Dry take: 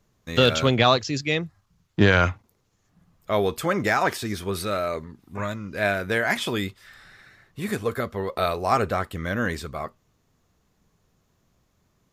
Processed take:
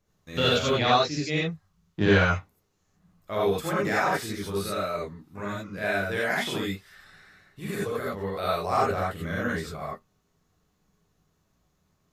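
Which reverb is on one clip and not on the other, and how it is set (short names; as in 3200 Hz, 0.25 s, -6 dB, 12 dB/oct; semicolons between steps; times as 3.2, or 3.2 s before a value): non-linear reverb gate 0.11 s rising, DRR -5.5 dB; gain -9.5 dB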